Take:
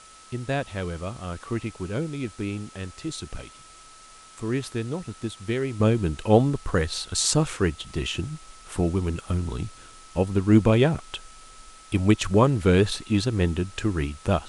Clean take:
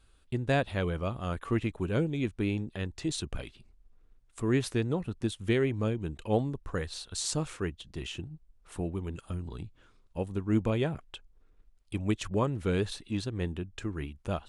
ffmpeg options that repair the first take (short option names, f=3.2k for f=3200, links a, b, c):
-af "bandreject=f=1.3k:w=30,afwtdn=0.004,asetnsamples=n=441:p=0,asendcmd='5.8 volume volume -10dB',volume=0dB"